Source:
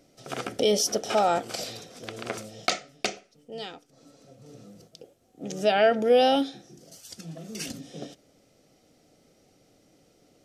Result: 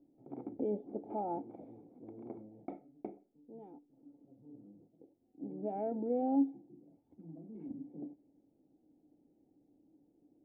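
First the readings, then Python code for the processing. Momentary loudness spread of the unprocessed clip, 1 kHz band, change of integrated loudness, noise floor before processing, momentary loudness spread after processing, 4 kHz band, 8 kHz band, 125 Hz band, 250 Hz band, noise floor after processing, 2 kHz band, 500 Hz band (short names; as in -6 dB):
21 LU, -15.5 dB, -13.0 dB, -63 dBFS, 23 LU, under -40 dB, under -40 dB, -11.0 dB, -4.5 dB, -74 dBFS, under -40 dB, -15.5 dB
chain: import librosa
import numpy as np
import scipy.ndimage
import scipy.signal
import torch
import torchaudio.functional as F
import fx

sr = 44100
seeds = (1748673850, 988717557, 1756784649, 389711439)

y = fx.formant_cascade(x, sr, vowel='u')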